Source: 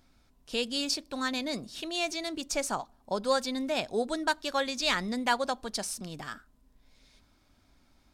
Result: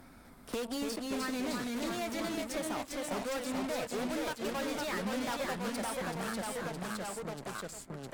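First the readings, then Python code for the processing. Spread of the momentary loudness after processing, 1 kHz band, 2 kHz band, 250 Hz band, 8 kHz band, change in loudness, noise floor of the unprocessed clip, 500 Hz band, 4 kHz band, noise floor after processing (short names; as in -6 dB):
6 LU, -5.0 dB, -5.0 dB, -0.5 dB, -4.0 dB, -5.0 dB, -65 dBFS, -3.5 dB, -9.0 dB, -55 dBFS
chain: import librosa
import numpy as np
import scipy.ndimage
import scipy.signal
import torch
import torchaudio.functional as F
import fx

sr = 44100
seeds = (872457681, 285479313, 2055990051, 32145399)

p1 = fx.band_shelf(x, sr, hz=4300.0, db=-9.5, octaves=1.7)
p2 = np.clip(p1, -10.0 ** (-32.0 / 20.0), 10.0 ** (-32.0 / 20.0))
p3 = p2 + fx.echo_single(p2, sr, ms=378, db=-13.5, dry=0)
p4 = fx.cheby_harmonics(p3, sr, harmonics=(7,), levels_db=(-13,), full_scale_db=-30.0)
p5 = fx.echo_pitch(p4, sr, ms=251, semitones=-1, count=3, db_per_echo=-3.0)
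p6 = fx.band_squash(p5, sr, depth_pct=70)
y = F.gain(torch.from_numpy(p6), -2.5).numpy()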